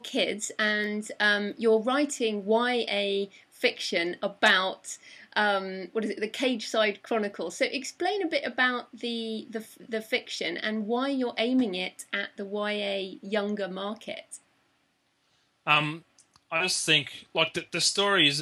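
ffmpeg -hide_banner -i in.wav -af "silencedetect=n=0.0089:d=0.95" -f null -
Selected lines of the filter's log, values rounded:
silence_start: 14.37
silence_end: 15.66 | silence_duration: 1.30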